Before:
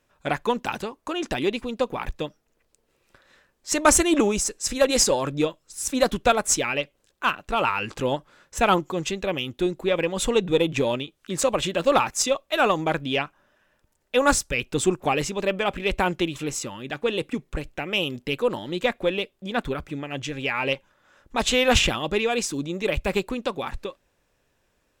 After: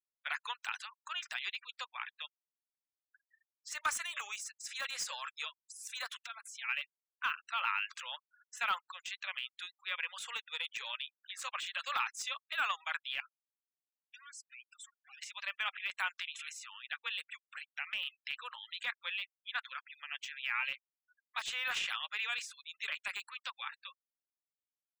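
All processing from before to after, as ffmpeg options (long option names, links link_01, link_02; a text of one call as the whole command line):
ffmpeg -i in.wav -filter_complex "[0:a]asettb=1/sr,asplit=3[link_01][link_02][link_03];[link_01]atrim=end=6.184[link_04];[link_02]atrim=start=6.18:end=6.69,asetpts=PTS-STARTPTS,afade=type=in:duration=0.004:curve=qsin,afade=type=out:start_time=0.506:duration=0.004:curve=qsin,aecho=1:1:4.4:0.63,atrim=end_sample=22491,acompressor=threshold=-28dB:ratio=16:attack=3.2:release=140:knee=1:detection=peak[link_05];[link_03]atrim=start=6.686[link_06];[link_04][link_05]acrossfade=duration=0.004:curve1=hsin:curve2=qsin[link_07];[link_07][link_06]acrossfade=duration=0.004:curve1=qsin:curve2=hsin,asettb=1/sr,asplit=3[link_08][link_09][link_10];[link_08]atrim=end=13.204[link_11];[link_09]atrim=start=13.2:end=15.22,asetpts=PTS-STARTPTS,afade=type=in:duration=0.004:curve=qsin,afade=type=out:start_time=2.016:duration=0.004:curve=qsin,acompressor=threshold=-30dB:ratio=3:attack=3.2:release=140:knee=1:detection=peak,aeval=exprs='(tanh(112*val(0)+0.55)-tanh(0.55))/112':channel_layout=same[link_12];[link_10]atrim=start=15.216[link_13];[link_11][link_12]acrossfade=duration=0.004:curve1=hsin:curve2=qsin[link_14];[link_14][link_13]acrossfade=duration=0.004:curve1=qsin:curve2=hsin,highpass=frequency=1300:width=0.5412,highpass=frequency=1300:width=1.3066,afftfilt=real='re*gte(hypot(re,im),0.00708)':imag='im*gte(hypot(re,im),0.00708)':win_size=1024:overlap=0.75,deesser=0.9,volume=-4.5dB" out.wav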